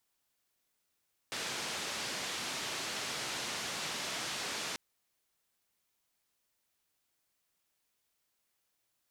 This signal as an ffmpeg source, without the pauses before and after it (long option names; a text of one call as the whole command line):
ffmpeg -f lavfi -i "anoisesrc=color=white:duration=3.44:sample_rate=44100:seed=1,highpass=frequency=120,lowpass=frequency=5600,volume=-27.9dB" out.wav